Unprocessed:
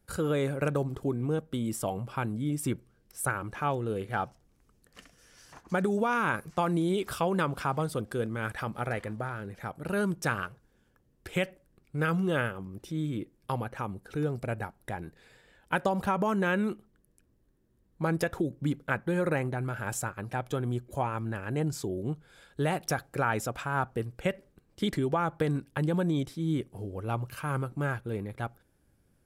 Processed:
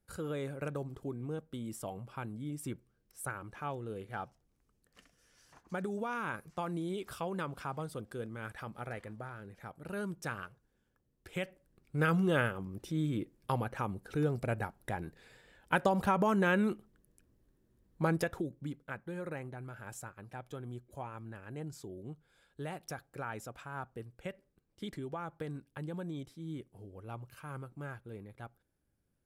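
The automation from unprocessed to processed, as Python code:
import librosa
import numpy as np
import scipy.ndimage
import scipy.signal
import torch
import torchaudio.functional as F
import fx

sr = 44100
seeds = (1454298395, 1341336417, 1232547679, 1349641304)

y = fx.gain(x, sr, db=fx.line((11.27, -9.5), (12.01, -1.0), (18.04, -1.0), (18.78, -12.5)))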